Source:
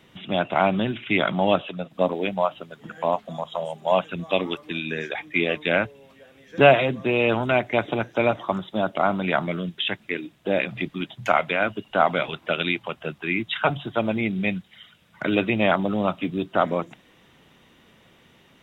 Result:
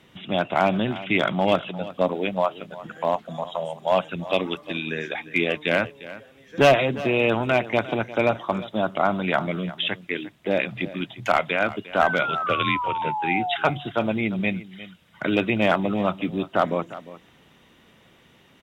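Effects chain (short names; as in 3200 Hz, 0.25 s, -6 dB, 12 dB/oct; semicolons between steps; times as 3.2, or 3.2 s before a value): one-sided clip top -11.5 dBFS, bottom -6.5 dBFS; 12.02–13.56 painted sound fall 690–1600 Hz -27 dBFS; 12.46–13.02 frequency shift -56 Hz; on a send: echo 0.352 s -16.5 dB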